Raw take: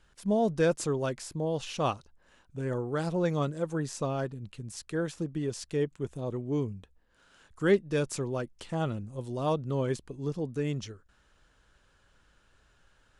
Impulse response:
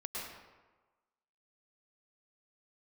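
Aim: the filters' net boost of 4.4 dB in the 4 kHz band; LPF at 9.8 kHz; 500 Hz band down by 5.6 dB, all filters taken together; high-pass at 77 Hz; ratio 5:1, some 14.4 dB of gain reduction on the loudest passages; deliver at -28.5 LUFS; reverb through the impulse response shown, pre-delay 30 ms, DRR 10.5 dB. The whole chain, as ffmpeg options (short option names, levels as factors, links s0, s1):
-filter_complex "[0:a]highpass=77,lowpass=9800,equalizer=f=500:t=o:g=-7,equalizer=f=4000:t=o:g=6,acompressor=threshold=0.0126:ratio=5,asplit=2[s0][s1];[1:a]atrim=start_sample=2205,adelay=30[s2];[s1][s2]afir=irnorm=-1:irlink=0,volume=0.251[s3];[s0][s3]amix=inputs=2:normalize=0,volume=4.73"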